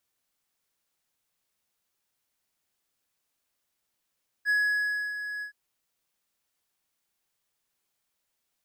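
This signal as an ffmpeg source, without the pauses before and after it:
ffmpeg -f lavfi -i "aevalsrc='0.112*(1-4*abs(mod(1680*t+0.25,1)-0.5))':duration=1.071:sample_rate=44100,afade=type=in:duration=0.045,afade=type=out:start_time=0.045:duration=0.641:silence=0.282,afade=type=out:start_time=0.97:duration=0.101" out.wav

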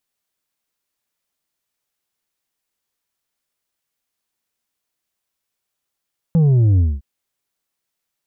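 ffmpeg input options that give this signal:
ffmpeg -f lavfi -i "aevalsrc='0.282*clip((0.66-t)/0.22,0,1)*tanh(1.78*sin(2*PI*170*0.66/log(65/170)*(exp(log(65/170)*t/0.66)-1)))/tanh(1.78)':duration=0.66:sample_rate=44100" out.wav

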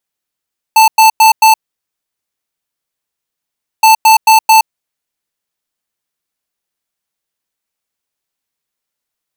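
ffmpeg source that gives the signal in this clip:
ffmpeg -f lavfi -i "aevalsrc='0.562*(2*lt(mod(883*t,1),0.5)-1)*clip(min(mod(mod(t,3.07),0.22),0.12-mod(mod(t,3.07),0.22))/0.005,0,1)*lt(mod(t,3.07),0.88)':duration=6.14:sample_rate=44100" out.wav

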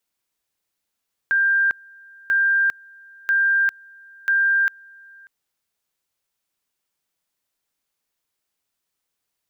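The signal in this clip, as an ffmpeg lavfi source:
ffmpeg -f lavfi -i "aevalsrc='pow(10,(-15-28*gte(mod(t,0.99),0.4))/20)*sin(2*PI*1590*t)':duration=3.96:sample_rate=44100" out.wav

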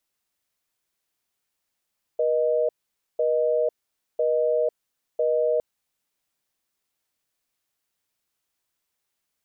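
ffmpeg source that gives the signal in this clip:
ffmpeg -f lavfi -i "aevalsrc='0.0794*(sin(2*PI*480*t)+sin(2*PI*620*t))*clip(min(mod(t,1),0.5-mod(t,1))/0.005,0,1)':duration=3.41:sample_rate=44100" out.wav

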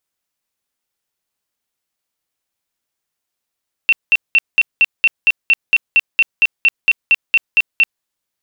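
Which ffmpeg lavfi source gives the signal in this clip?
ffmpeg -f lavfi -i "aevalsrc='0.447*sin(2*PI*2700*mod(t,0.23))*lt(mod(t,0.23),96/2700)':duration=4.14:sample_rate=44100" out.wav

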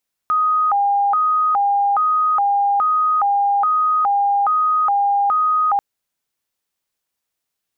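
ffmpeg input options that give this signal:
ffmpeg -f lavfi -i "aevalsrc='0.211*sin(2*PI*(1028*t+222/1.2*(0.5-abs(mod(1.2*t,1)-0.5))))':duration=5.49:sample_rate=44100" out.wav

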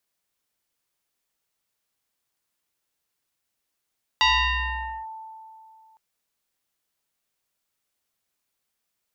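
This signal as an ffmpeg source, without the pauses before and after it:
ffmpeg -f lavfi -i "aevalsrc='0.188*pow(10,-3*t/2.67)*sin(2*PI*884*t+3.8*clip(1-t/0.85,0,1)*sin(2*PI*1.07*884*t))':duration=1.76:sample_rate=44100" out.wav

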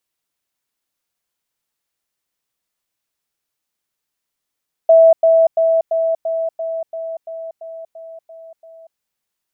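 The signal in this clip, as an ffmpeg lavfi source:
ffmpeg -f lavfi -i "aevalsrc='pow(10,(-5-3*floor(t/0.34))/20)*sin(2*PI*655*t)*clip(min(mod(t,0.34),0.24-mod(t,0.34))/0.005,0,1)':duration=4.08:sample_rate=44100" out.wav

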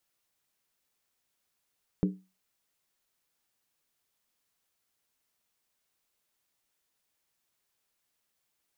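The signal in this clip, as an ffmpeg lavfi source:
ffmpeg -f lavfi -i "aevalsrc='0.1*pow(10,-3*t/0.29)*sin(2*PI*187*t)+0.0531*pow(10,-3*t/0.23)*sin(2*PI*298.1*t)+0.0282*pow(10,-3*t/0.198)*sin(2*PI*399.4*t)+0.015*pow(10,-3*t/0.191)*sin(2*PI*429.4*t)+0.00794*pow(10,-3*t/0.178)*sin(2*PI*496.1*t)':duration=0.63:sample_rate=44100" out.wav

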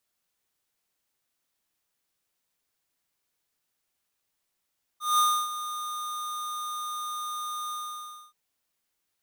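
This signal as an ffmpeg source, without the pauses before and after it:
ffmpeg -f lavfi -i "aevalsrc='0.0891*(2*lt(mod(1220*t,1),0.5)-1)':duration=3.328:sample_rate=44100,afade=type=in:duration=0.184,afade=type=out:start_time=0.184:duration=0.293:silence=0.224,afade=type=out:start_time=2.71:duration=0.618" out.wav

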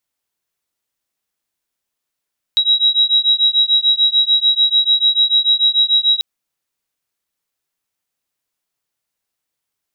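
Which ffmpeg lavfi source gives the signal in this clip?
ffmpeg -f lavfi -i "aevalsrc='0.2*(sin(2*PI*3850*t)+sin(2*PI*3856.8*t))':duration=3.64:sample_rate=44100" out.wav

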